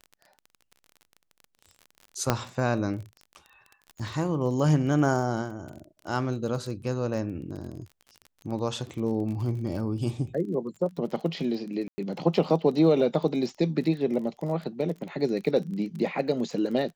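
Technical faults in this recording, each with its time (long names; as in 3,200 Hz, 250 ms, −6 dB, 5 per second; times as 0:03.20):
surface crackle 27 per second −36 dBFS
0:02.30: click −7 dBFS
0:11.88–0:11.98: drop-out 100 ms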